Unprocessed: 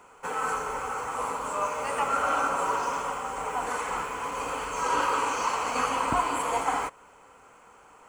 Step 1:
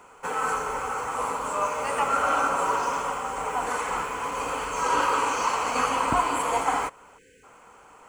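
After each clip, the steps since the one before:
time-frequency box erased 0:07.18–0:07.44, 530–1,500 Hz
level +2.5 dB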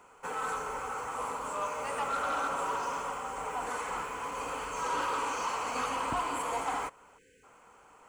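soft clipping −18.5 dBFS, distortion −17 dB
level −6.5 dB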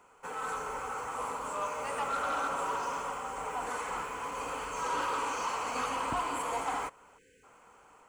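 automatic gain control gain up to 3 dB
level −3.5 dB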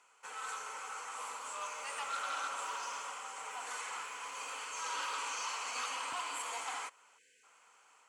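resonant band-pass 4,900 Hz, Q 0.68
level +3 dB

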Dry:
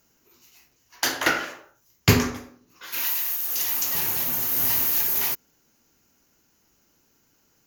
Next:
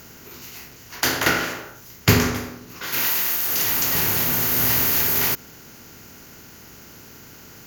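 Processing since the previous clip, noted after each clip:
compressor on every frequency bin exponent 0.6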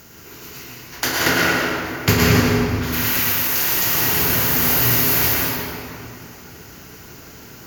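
convolution reverb RT60 2.7 s, pre-delay 101 ms, DRR −4.5 dB
level −1 dB

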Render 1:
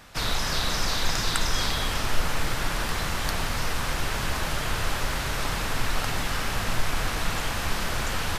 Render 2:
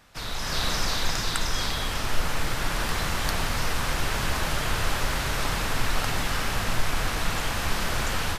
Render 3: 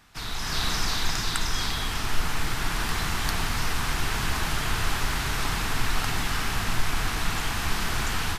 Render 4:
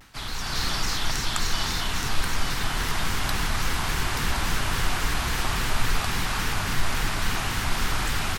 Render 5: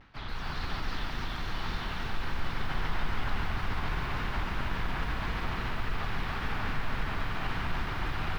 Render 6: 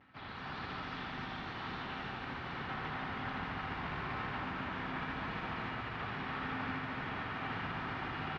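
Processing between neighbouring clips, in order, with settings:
automatic gain control gain up to 9 dB; level −7.5 dB
parametric band 550 Hz −11.5 dB 0.36 octaves
reversed playback; upward compression, threshold −28 dBFS; reversed playback; single-tap delay 877 ms −5.5 dB; pitch modulation by a square or saw wave square 3.6 Hz, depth 160 cents
brickwall limiter −19.5 dBFS, peak gain reduction 9.5 dB; high-frequency loss of the air 300 metres; feedback echo at a low word length 142 ms, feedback 80%, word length 9 bits, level −6 dB; level −3.5 dB
band-pass filter 120–3,200 Hz; tuned comb filter 260 Hz, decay 0.39 s, harmonics odd, mix 70%; single-tap delay 80 ms −4 dB; level +5 dB

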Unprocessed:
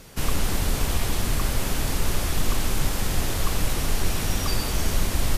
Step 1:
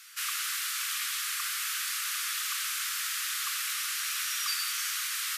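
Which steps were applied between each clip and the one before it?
Butterworth high-pass 1,200 Hz 72 dB per octave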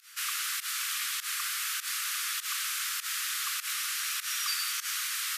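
fake sidechain pumping 100 BPM, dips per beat 1, −19 dB, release 105 ms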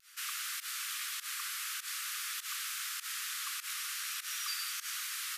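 pitch vibrato 0.49 Hz 17 cents
level −6 dB

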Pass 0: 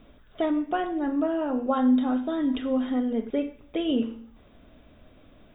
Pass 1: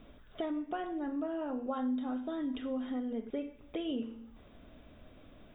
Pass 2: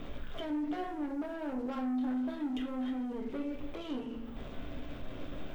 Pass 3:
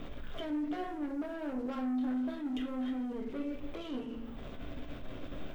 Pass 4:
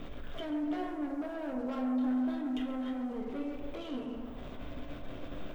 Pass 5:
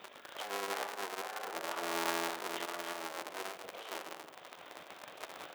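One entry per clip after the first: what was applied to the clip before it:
downward compressor 2 to 1, threshold −38 dBFS, peak gain reduction 11.5 dB; level −2 dB
leveller curve on the samples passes 3; brickwall limiter −36 dBFS, peak gain reduction 11.5 dB; convolution reverb RT60 0.50 s, pre-delay 7 ms, DRR 4 dB
dynamic equaliser 870 Hz, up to −5 dB, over −59 dBFS, Q 5.8; level that may rise only so fast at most 130 dB per second
feedback echo with a band-pass in the loop 135 ms, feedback 77%, band-pass 770 Hz, level −5 dB
sub-harmonics by changed cycles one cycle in 3, inverted; power curve on the samples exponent 1.4; high-pass filter 720 Hz 12 dB per octave; level +4.5 dB

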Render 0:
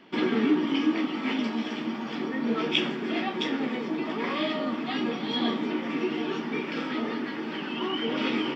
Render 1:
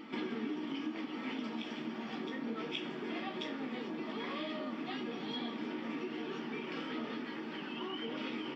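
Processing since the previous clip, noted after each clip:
downward compressor 4 to 1, threshold −28 dBFS, peak gain reduction 9 dB
backwards echo 1,137 ms −8 dB
level −8.5 dB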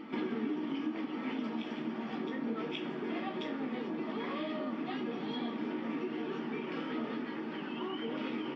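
high-shelf EQ 2,900 Hz −11 dB
level +3.5 dB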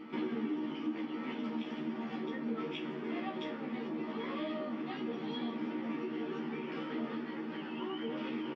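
double-tracking delay 13 ms −3 dB
level −4 dB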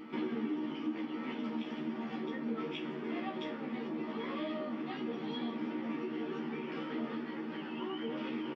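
upward compression, threshold −60 dBFS

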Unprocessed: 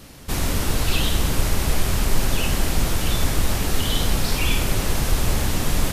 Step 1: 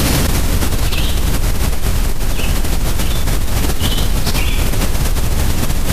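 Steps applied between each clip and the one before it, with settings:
low-shelf EQ 160 Hz +4.5 dB
envelope flattener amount 100%
level −6 dB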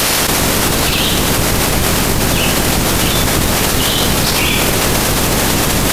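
ceiling on every frequency bin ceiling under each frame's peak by 22 dB
bit-depth reduction 6 bits, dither none
level −1 dB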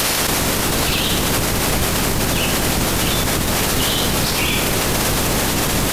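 brickwall limiter −8.5 dBFS, peak gain reduction 7.5 dB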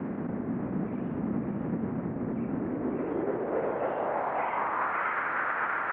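single-sideband voice off tune −280 Hz 380–2,300 Hz
single-tap delay 549 ms −4.5 dB
band-pass filter sweep 220 Hz → 1,400 Hz, 0:02.47–0:05.14

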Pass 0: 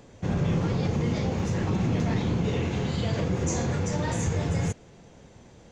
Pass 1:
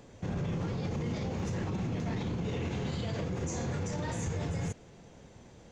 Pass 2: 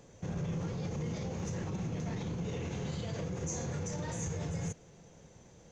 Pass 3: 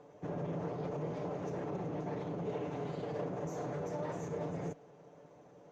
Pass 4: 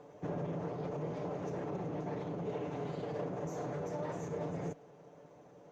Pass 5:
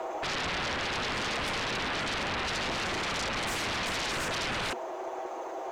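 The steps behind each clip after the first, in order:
brickwall limiter −24 dBFS, peak gain reduction 8 dB; level −2.5 dB
thirty-one-band graphic EQ 160 Hz +5 dB, 250 Hz −3 dB, 500 Hz +3 dB, 6,300 Hz +9 dB; level −4.5 dB
lower of the sound and its delayed copy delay 6.8 ms; resonant band-pass 550 Hz, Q 0.93; level +6 dB
speech leveller 0.5 s
frequency shifter +210 Hz; sine wavefolder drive 19 dB, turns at −26.5 dBFS; level −2.5 dB

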